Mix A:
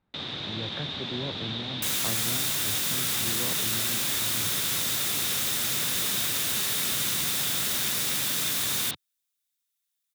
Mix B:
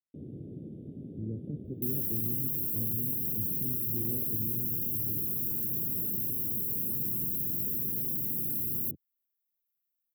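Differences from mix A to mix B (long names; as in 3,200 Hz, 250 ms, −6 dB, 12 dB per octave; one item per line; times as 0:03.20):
speech: entry +0.70 s
master: add inverse Chebyshev band-stop filter 920–6,900 Hz, stop band 50 dB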